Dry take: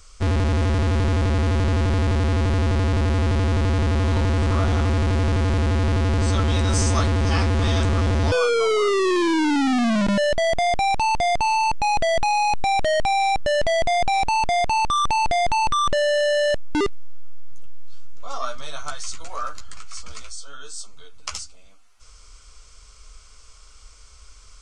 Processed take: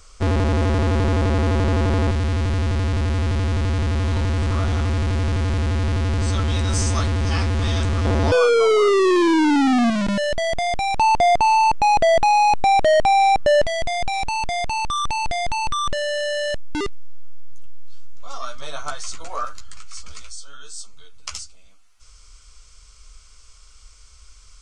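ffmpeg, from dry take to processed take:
-af "asetnsamples=n=441:p=0,asendcmd='2.11 equalizer g -3.5;8.05 equalizer g 4.5;9.9 equalizer g -2.5;10.96 equalizer g 6;13.66 equalizer g -5;18.62 equalizer g 4.5;19.45 equalizer g -5.5',equalizer=f=530:t=o:w=2.9:g=4"

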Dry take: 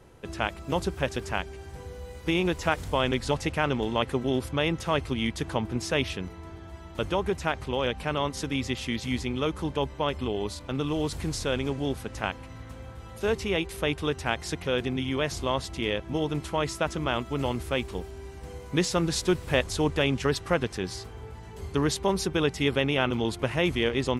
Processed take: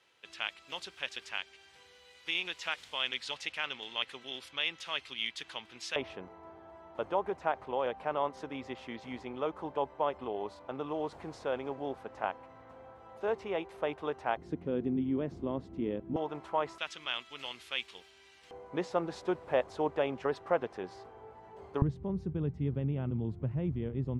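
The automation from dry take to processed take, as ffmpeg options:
-af "asetnsamples=n=441:p=0,asendcmd='5.96 bandpass f 760;14.37 bandpass f 260;16.16 bandpass f 840;16.78 bandpass f 3200;18.51 bandpass f 710;21.82 bandpass f 130',bandpass=f=3200:t=q:w=1.5:csg=0"

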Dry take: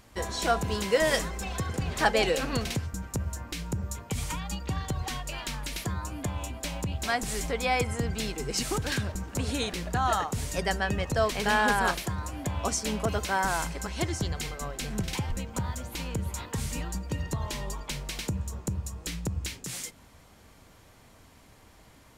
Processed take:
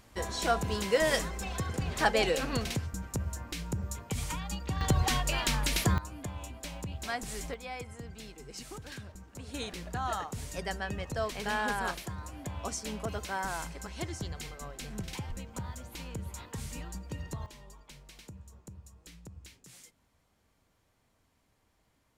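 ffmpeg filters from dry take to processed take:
-af "asetnsamples=n=441:p=0,asendcmd='4.81 volume volume 5.5dB;5.98 volume volume -7dB;7.54 volume volume -14.5dB;9.54 volume volume -7.5dB;17.46 volume volume -17dB',volume=0.75"

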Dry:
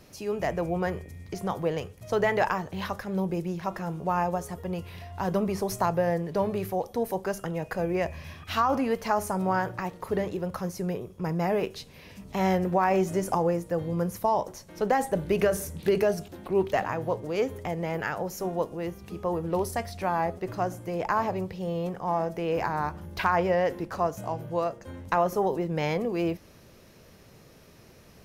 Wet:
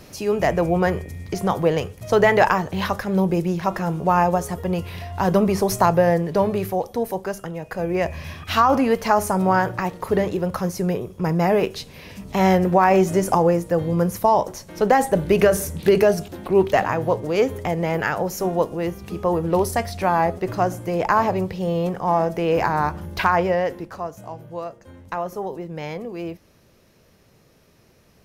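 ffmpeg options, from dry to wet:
-af "volume=7.08,afade=t=out:st=5.96:d=1.67:silence=0.354813,afade=t=in:st=7.63:d=0.6:silence=0.398107,afade=t=out:st=23.01:d=1.01:silence=0.281838"

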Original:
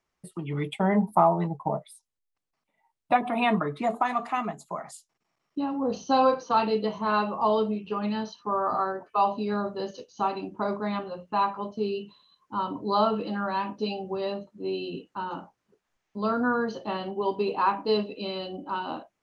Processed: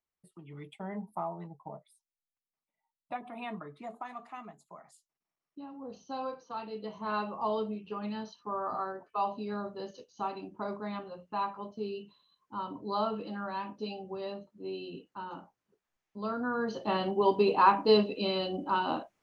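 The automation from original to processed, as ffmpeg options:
-af "volume=1.26,afade=t=in:st=6.7:d=0.42:silence=0.398107,afade=t=in:st=16.51:d=0.49:silence=0.316228"

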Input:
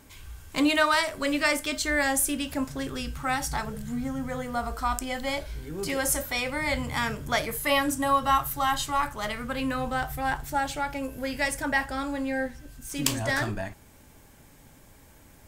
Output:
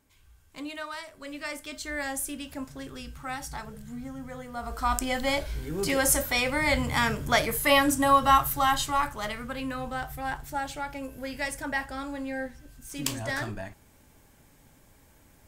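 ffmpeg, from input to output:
-af "volume=1.41,afade=t=in:st=1.14:d=0.89:silence=0.421697,afade=t=in:st=4.56:d=0.45:silence=0.298538,afade=t=out:st=8.39:d=1.23:silence=0.421697"

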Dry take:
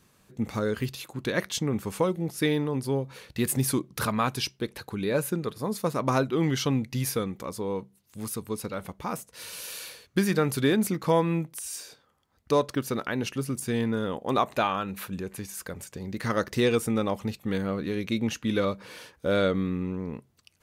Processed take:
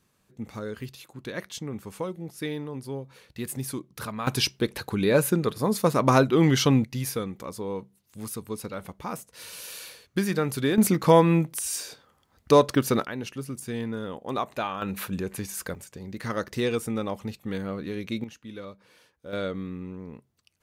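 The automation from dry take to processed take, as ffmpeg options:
-af "asetnsamples=n=441:p=0,asendcmd='4.27 volume volume 5.5dB;6.84 volume volume -1.5dB;10.78 volume volume 6dB;13.05 volume volume -4.5dB;14.82 volume volume 3.5dB;15.75 volume volume -3dB;18.24 volume volume -14dB;19.33 volume volume -6.5dB',volume=0.447"

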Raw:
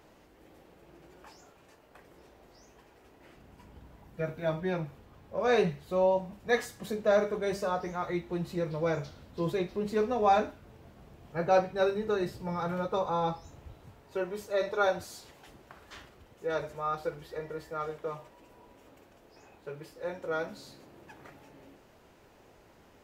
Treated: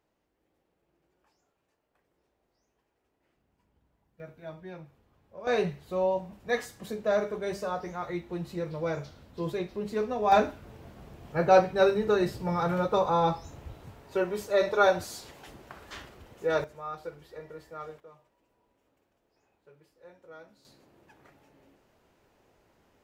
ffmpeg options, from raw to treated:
-af "asetnsamples=n=441:p=0,asendcmd='4.2 volume volume -11.5dB;5.47 volume volume -1.5dB;10.32 volume volume 5dB;16.64 volume volume -5.5dB;18 volume volume -16dB;20.65 volume volume -7dB',volume=0.112"

